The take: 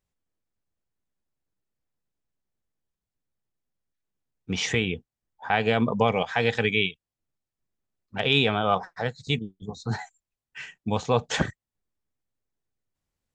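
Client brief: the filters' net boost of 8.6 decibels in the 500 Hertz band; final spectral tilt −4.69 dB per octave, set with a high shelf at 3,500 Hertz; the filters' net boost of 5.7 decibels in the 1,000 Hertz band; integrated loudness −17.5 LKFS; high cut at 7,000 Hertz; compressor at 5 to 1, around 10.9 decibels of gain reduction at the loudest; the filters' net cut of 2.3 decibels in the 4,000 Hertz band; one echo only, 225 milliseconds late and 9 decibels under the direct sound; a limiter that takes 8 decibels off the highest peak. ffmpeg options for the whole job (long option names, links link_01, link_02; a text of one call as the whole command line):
ffmpeg -i in.wav -af "lowpass=7000,equalizer=frequency=500:width_type=o:gain=9,equalizer=frequency=1000:width_type=o:gain=3.5,highshelf=frequency=3500:gain=9,equalizer=frequency=4000:width_type=o:gain=-9,acompressor=threshold=-22dB:ratio=5,alimiter=limit=-15.5dB:level=0:latency=1,aecho=1:1:225:0.355,volume=12dB" out.wav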